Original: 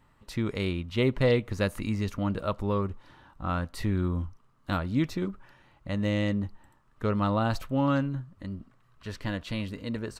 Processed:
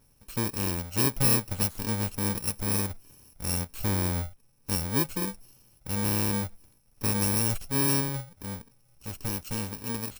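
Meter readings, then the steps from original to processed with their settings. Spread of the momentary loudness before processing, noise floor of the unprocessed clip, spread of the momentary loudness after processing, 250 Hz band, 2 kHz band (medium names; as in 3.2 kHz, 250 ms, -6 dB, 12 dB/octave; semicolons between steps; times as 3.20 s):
14 LU, -64 dBFS, 15 LU, -3.0 dB, -0.5 dB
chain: bit-reversed sample order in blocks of 64 samples; endings held to a fixed fall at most 410 dB/s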